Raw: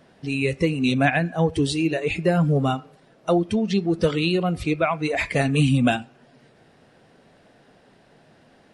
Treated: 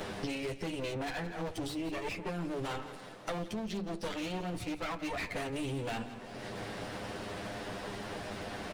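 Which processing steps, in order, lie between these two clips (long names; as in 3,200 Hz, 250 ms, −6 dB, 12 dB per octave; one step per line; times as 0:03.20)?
lower of the sound and its delayed copy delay 9.9 ms
hum removal 48.42 Hz, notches 7
reversed playback
downward compressor 6 to 1, threshold −34 dBFS, peak gain reduction 16 dB
reversed playback
hard clipping −32 dBFS, distortion −15 dB
on a send: repeating echo 164 ms, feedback 29%, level −15.5 dB
on the sum: multiband upward and downward compressor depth 100%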